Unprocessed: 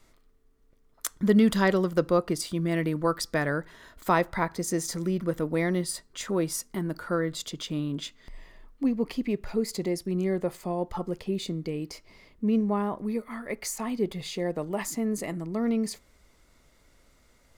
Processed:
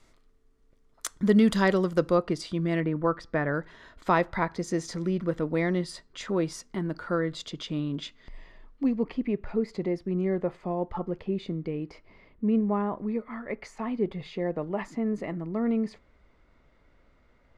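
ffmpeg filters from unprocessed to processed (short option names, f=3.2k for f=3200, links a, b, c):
-af "asetnsamples=n=441:p=0,asendcmd='2.15 lowpass f 4600;2.8 lowpass f 2000;3.54 lowpass f 4600;9.03 lowpass f 2300',lowpass=8.9k"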